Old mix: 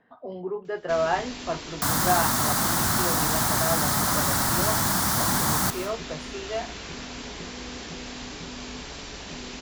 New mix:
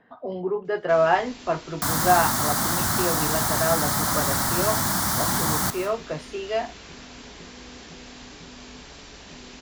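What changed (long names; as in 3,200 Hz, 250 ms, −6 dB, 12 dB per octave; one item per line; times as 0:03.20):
speech +5.0 dB
first sound −5.5 dB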